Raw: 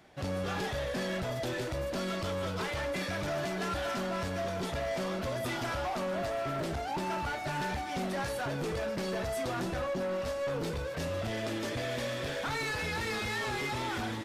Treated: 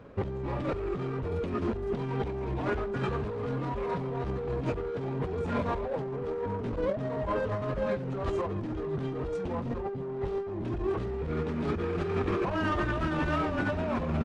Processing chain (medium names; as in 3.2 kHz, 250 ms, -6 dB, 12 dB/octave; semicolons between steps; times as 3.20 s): low-pass 1.1 kHz 6 dB/octave; compressor with a negative ratio -38 dBFS, ratio -0.5; pitch shift -6 st; trim +8 dB